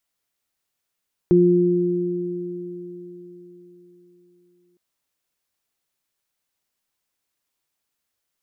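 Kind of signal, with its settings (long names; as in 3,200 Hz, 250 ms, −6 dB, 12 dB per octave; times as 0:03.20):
inharmonic partials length 3.46 s, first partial 176 Hz, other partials 353 Hz, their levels 4.5 dB, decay 3.90 s, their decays 4.22 s, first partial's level −16 dB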